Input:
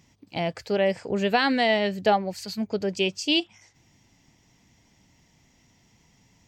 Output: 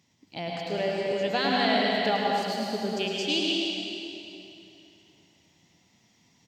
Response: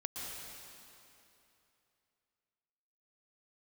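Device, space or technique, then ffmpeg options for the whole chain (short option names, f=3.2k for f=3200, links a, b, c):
PA in a hall: -filter_complex "[0:a]highpass=120,equalizer=f=3.9k:t=o:w=0.59:g=6,aecho=1:1:105:0.447[a];[1:a]atrim=start_sample=2205[b];[a][b]afir=irnorm=-1:irlink=0,volume=-4dB"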